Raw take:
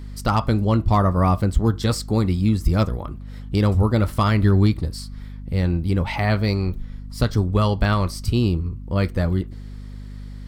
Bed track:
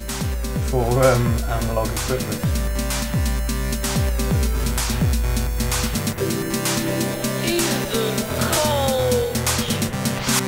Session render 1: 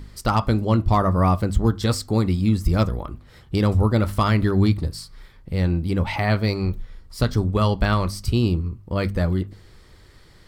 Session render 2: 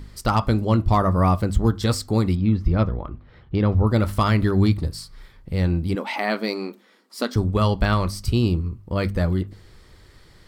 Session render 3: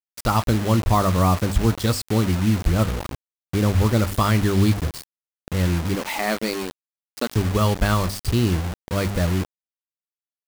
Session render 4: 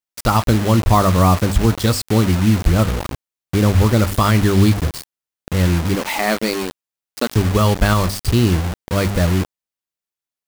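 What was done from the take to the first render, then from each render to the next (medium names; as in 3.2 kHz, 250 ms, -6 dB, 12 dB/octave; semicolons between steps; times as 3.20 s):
de-hum 50 Hz, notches 5
2.35–3.87 s: distance through air 290 m; 5.95–7.36 s: brick-wall FIR high-pass 200 Hz
bit crusher 5-bit
trim +5 dB; peak limiter -3 dBFS, peak gain reduction 2.5 dB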